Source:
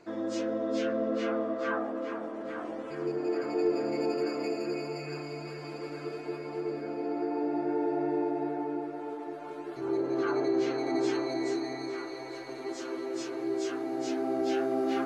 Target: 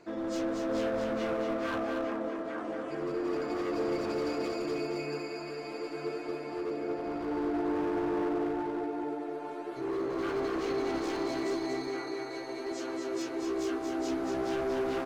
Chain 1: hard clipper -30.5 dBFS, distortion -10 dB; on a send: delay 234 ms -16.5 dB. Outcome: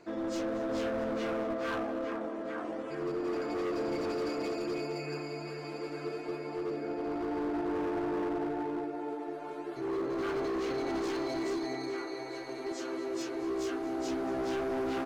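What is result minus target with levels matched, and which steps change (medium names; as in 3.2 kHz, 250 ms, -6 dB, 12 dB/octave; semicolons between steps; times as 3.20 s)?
echo-to-direct -12 dB
change: delay 234 ms -4.5 dB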